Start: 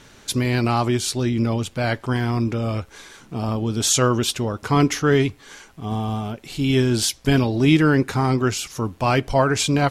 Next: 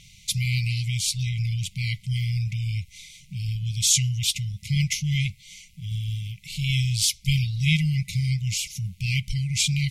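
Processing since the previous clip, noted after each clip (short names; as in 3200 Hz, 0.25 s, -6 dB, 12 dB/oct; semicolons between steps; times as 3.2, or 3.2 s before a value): FFT band-reject 200–2000 Hz; bell 250 Hz -2.5 dB 1.2 oct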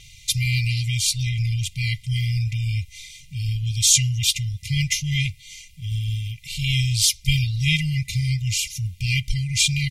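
comb 2.5 ms, depth 81%; gain +2 dB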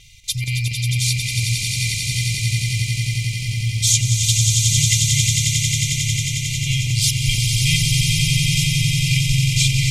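chopper 4.2 Hz, depth 65%, duty 85%; on a send: swelling echo 90 ms, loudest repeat 8, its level -6 dB; on the sum: gain -1 dB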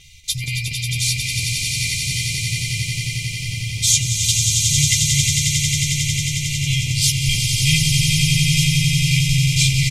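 doubler 13 ms -5 dB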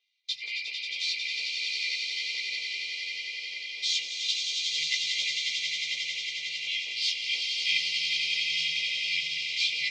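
gate with hold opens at -21 dBFS; elliptic band-pass 470–4500 Hz, stop band 60 dB; chorus voices 6, 0.82 Hz, delay 16 ms, depth 4 ms; gain -2.5 dB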